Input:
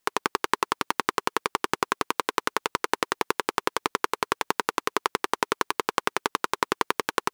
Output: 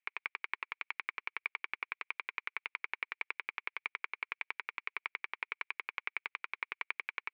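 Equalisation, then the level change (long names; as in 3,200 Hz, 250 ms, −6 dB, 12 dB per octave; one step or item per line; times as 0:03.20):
resonant band-pass 2,300 Hz, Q 9.1
high-frequency loss of the air 210 metres
+4.0 dB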